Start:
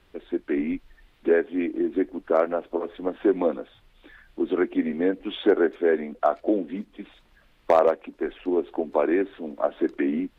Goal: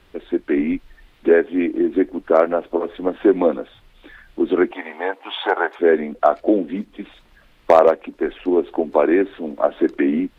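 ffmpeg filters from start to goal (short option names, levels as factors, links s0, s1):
-filter_complex "[0:a]asettb=1/sr,asplit=3[s0][s1][s2];[s0]atrim=end=4.714[s3];[s1]atrim=start=4.71:end=5.79,asetpts=PTS-STARTPTS,afade=t=in:d=0.004:c=qsin,afade=t=out:st=1.076:d=0.004:c=qsin,highpass=f=870:t=q:w=4.9[s4];[s2]atrim=start=5.786[s5];[s3][s4]acrossfade=d=0.004:c1=hsin:c2=qsin[s6];[s6][s5]acrossfade=d=0.004:c1=qsin:c2=hsin,volume=2.11"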